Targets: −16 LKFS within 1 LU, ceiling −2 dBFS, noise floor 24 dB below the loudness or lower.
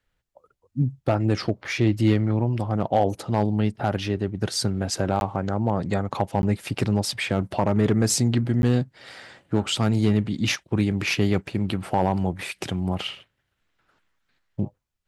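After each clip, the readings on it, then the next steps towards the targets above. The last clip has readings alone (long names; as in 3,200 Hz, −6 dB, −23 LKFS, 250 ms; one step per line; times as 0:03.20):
share of clipped samples 0.3%; peaks flattened at −11.0 dBFS; number of dropouts 3; longest dropout 11 ms; integrated loudness −24.5 LKFS; sample peak −11.0 dBFS; target loudness −16.0 LKFS
→ clipped peaks rebuilt −11 dBFS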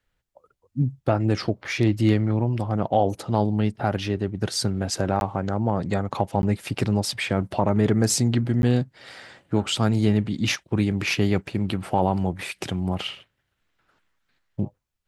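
share of clipped samples 0.0%; number of dropouts 3; longest dropout 11 ms
→ repair the gap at 0:05.20/0:06.42/0:08.62, 11 ms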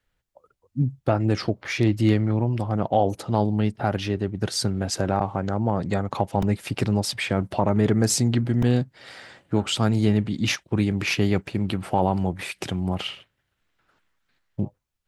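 number of dropouts 0; integrated loudness −24.0 LKFS; sample peak −7.0 dBFS; target loudness −16.0 LKFS
→ level +8 dB
brickwall limiter −2 dBFS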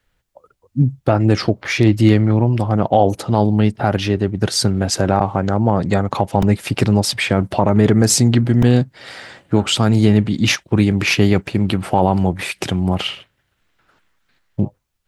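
integrated loudness −16.5 LKFS; sample peak −2.0 dBFS; background noise floor −69 dBFS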